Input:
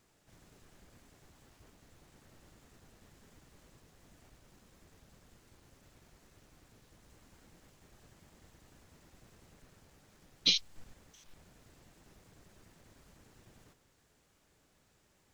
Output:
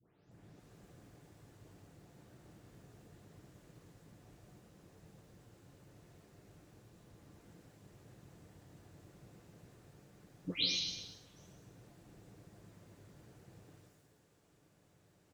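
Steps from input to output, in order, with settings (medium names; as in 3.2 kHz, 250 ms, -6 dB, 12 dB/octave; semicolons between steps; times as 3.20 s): delay that grows with frequency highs late, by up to 313 ms; high-pass 69 Hz; tilt shelf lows +5 dB, about 630 Hz; delay 237 ms -14 dB; on a send at -2.5 dB: reverberation RT60 0.80 s, pre-delay 97 ms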